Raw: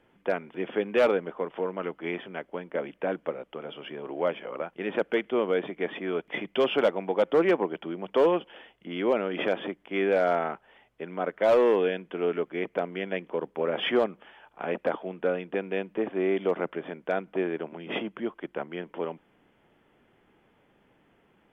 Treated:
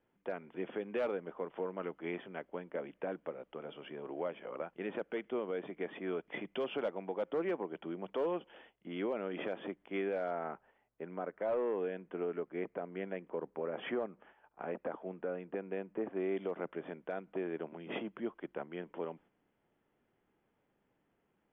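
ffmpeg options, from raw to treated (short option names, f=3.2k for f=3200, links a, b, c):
-filter_complex "[0:a]asettb=1/sr,asplit=3[a][b][c];[a]atrim=end=10.314[d];[b]atrim=start=10.31:end=16.17,asetpts=PTS-STARTPTS,afade=t=in:d=0.004:c=qsin,afade=t=out:st=5.856:d=0.004:c=qsin,lowpass=2.2k[e];[c]atrim=start=16.166[f];[d][e]acrossfade=d=0.004:c1=hsin:c2=qsin[g];[g][f]acrossfade=d=0.004:c1=qsin:c2=hsin,agate=range=-7dB:threshold=-52dB:ratio=16:detection=peak,highshelf=f=3.5k:g=-10,alimiter=limit=-21dB:level=0:latency=1:release=193,volume=-6.5dB"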